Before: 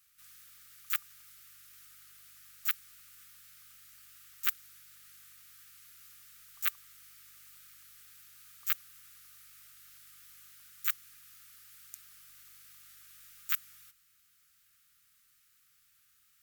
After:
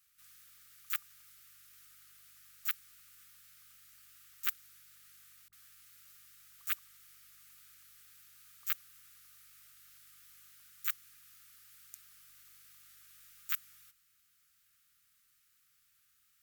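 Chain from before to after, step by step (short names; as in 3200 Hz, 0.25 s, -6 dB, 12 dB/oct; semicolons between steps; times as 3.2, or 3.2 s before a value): 5.48–7.77 dispersion highs, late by 47 ms, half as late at 620 Hz; gain -3.5 dB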